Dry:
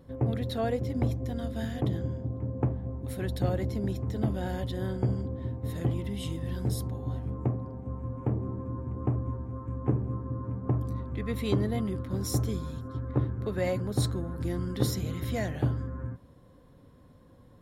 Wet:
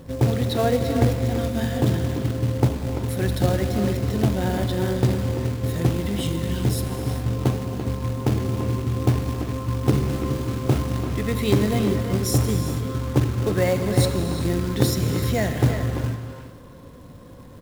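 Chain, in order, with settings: in parallel at -3 dB: compression 6:1, threshold -42 dBFS, peak gain reduction 20 dB; on the sum: short-mantissa float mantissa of 2-bit; 9.91–10.82 s: doubling 29 ms -4 dB; speakerphone echo 340 ms, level -8 dB; gated-style reverb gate 450 ms flat, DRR 7 dB; trim +7 dB

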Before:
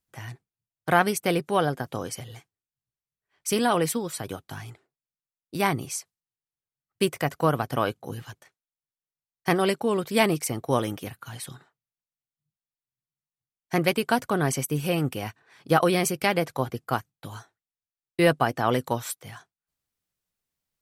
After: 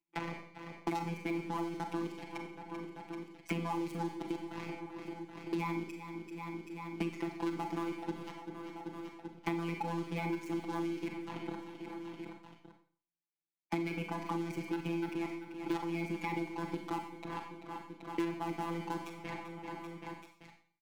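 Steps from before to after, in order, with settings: vowel filter u; treble shelf 4.8 kHz -4.5 dB; level held to a coarse grid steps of 15 dB; waveshaping leveller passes 5; robot voice 168 Hz; on a send: feedback delay 388 ms, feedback 39%, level -17.5 dB; on the sum: Schroeder reverb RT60 0.46 s, combs from 28 ms, DRR 4.5 dB; three bands compressed up and down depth 100%; trim -3.5 dB

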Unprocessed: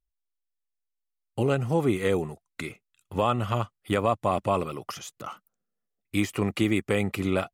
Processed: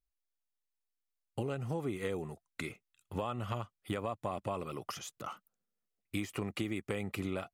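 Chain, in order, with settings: compression, threshold -28 dBFS, peak gain reduction 10 dB; trim -4.5 dB

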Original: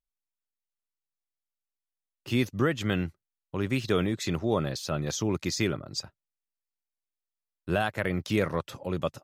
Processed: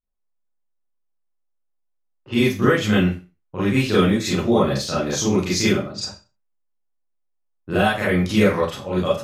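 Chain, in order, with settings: level-controlled noise filter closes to 1 kHz, open at -27 dBFS; Schroeder reverb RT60 0.31 s, combs from 30 ms, DRR -9 dB

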